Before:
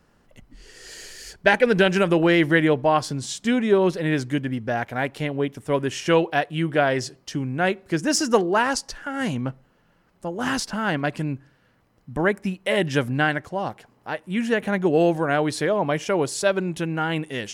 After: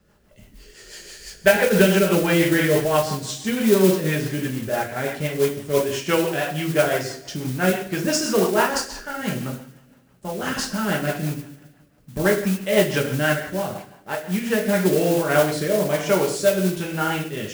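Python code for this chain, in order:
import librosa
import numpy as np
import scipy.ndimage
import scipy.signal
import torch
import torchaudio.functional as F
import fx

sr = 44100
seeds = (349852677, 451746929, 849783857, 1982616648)

y = fx.rev_double_slope(x, sr, seeds[0], early_s=0.57, late_s=1.7, knee_db=-18, drr_db=-2.0)
y = fx.rotary_switch(y, sr, hz=6.0, then_hz=1.2, switch_at_s=14.16)
y = fx.mod_noise(y, sr, seeds[1], snr_db=14)
y = y * librosa.db_to_amplitude(-1.0)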